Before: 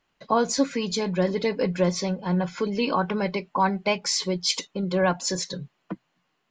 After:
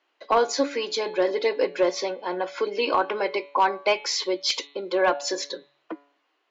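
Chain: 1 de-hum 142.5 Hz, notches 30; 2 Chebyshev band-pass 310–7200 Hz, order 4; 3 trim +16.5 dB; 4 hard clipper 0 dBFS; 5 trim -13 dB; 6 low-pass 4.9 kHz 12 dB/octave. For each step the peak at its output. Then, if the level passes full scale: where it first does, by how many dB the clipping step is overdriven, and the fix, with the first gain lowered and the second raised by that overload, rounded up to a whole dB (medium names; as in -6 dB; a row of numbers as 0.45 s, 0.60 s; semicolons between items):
-9.5 dBFS, -10.0 dBFS, +6.5 dBFS, 0.0 dBFS, -13.0 dBFS, -12.5 dBFS; step 3, 6.5 dB; step 3 +9.5 dB, step 5 -6 dB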